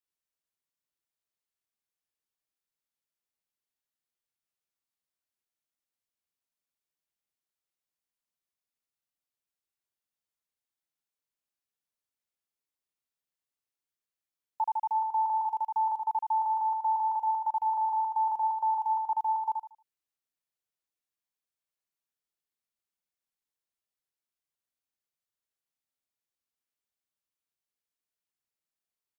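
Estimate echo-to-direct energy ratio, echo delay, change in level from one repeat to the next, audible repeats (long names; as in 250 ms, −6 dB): −4.5 dB, 77 ms, −11.5 dB, 3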